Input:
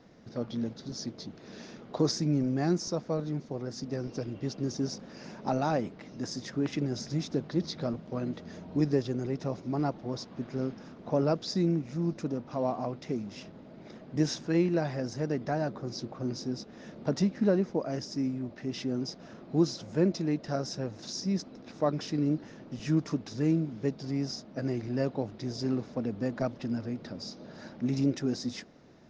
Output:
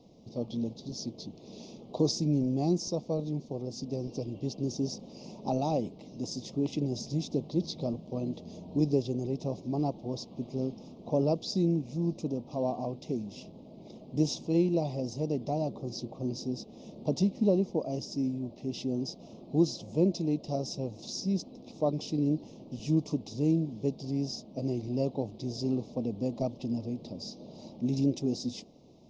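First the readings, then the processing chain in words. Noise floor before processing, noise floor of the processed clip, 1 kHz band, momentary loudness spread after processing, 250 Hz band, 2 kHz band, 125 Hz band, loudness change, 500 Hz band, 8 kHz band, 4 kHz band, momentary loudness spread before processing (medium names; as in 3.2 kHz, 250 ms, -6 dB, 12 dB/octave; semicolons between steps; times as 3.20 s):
-50 dBFS, -51 dBFS, -2.5 dB, 12 LU, 0.0 dB, under -10 dB, 0.0 dB, 0.0 dB, 0.0 dB, no reading, -0.5 dB, 12 LU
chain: Butterworth band-stop 1.6 kHz, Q 0.77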